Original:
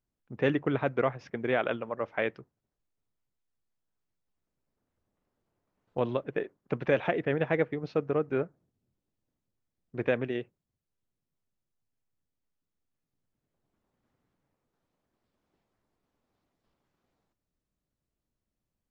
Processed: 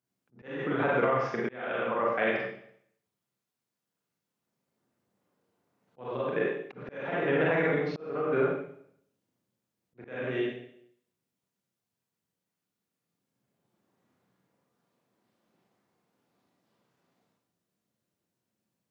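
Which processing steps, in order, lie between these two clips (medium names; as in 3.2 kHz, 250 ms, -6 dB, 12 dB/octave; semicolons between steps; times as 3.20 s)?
high-pass 110 Hz 24 dB/octave; Schroeder reverb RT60 0.68 s, combs from 32 ms, DRR -4 dB; dynamic bell 1.3 kHz, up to +5 dB, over -41 dBFS, Q 1.2; peak limiter -16.5 dBFS, peak gain reduction 8.5 dB; slow attack 476 ms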